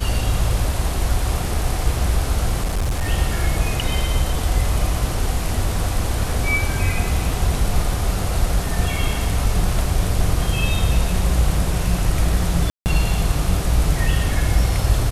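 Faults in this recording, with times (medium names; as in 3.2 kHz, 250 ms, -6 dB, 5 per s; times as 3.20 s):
2.64–3.09 s: clipped -17 dBFS
12.70–12.86 s: dropout 159 ms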